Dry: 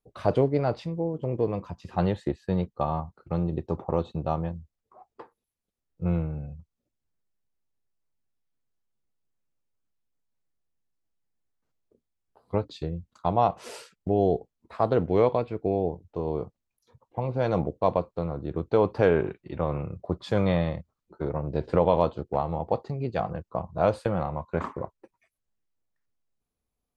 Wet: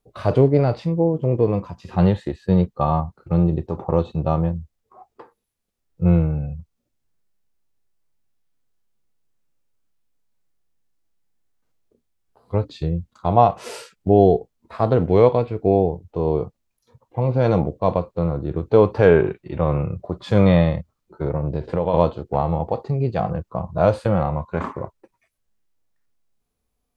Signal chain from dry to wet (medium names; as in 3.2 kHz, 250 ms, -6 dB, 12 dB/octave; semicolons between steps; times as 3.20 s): 21.26–21.94 s: compression 4:1, threshold -26 dBFS, peak gain reduction 9.5 dB; harmonic-percussive split harmonic +9 dB; trim +1.5 dB